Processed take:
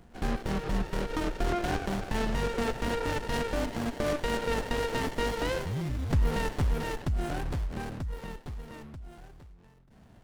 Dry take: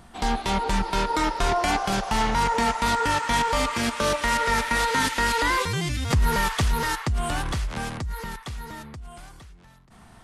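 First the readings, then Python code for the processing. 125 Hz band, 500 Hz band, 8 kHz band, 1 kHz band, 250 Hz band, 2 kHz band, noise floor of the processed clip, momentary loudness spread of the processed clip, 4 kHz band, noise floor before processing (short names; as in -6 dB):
-3.5 dB, -3.0 dB, -13.0 dB, -12.5 dB, -4.0 dB, -11.0 dB, -56 dBFS, 12 LU, -11.0 dB, -50 dBFS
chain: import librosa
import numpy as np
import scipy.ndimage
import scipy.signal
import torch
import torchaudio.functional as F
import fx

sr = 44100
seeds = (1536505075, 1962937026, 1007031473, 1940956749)

y = fx.running_max(x, sr, window=33)
y = y * librosa.db_to_amplitude(-4.0)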